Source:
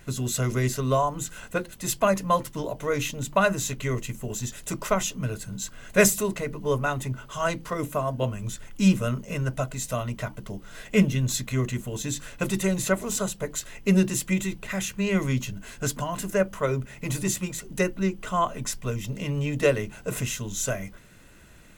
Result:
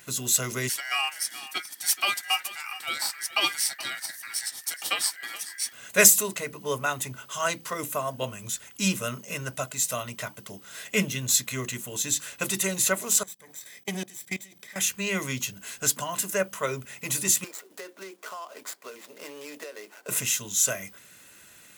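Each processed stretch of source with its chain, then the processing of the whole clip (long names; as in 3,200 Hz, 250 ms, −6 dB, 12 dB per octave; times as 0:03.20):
0:00.69–0:05.73: low-shelf EQ 460 Hz −11 dB + ring modulation 1,800 Hz + single-tap delay 424 ms −15.5 dB
0:13.23–0:14.76: lower of the sound and its delayed copy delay 0.52 ms + output level in coarse steps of 23 dB + notch comb filter 1,400 Hz
0:17.44–0:20.09: running median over 15 samples + high-pass filter 330 Hz 24 dB per octave + downward compressor 12 to 1, threshold −33 dBFS
whole clip: high-pass filter 70 Hz; spectral tilt +3 dB per octave; level −1 dB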